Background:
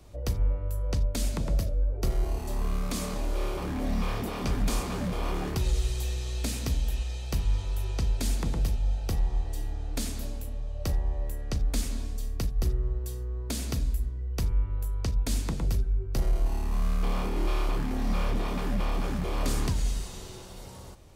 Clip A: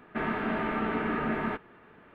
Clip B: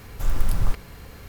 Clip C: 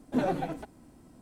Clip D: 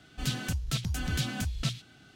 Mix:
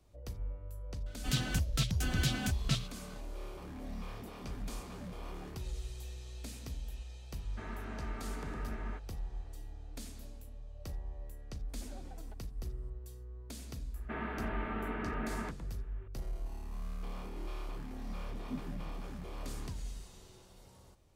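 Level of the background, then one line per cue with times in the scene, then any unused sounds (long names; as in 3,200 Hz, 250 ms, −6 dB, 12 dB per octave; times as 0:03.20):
background −14 dB
0:01.06: mix in D −1 dB
0:07.42: mix in A −15.5 dB
0:11.69: mix in C −12 dB + downward compressor, threshold −38 dBFS
0:13.94: mix in A −9 dB
0:18.36: mix in C −9.5 dB + inverse Chebyshev low-pass filter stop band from 840 Hz, stop band 60 dB
not used: B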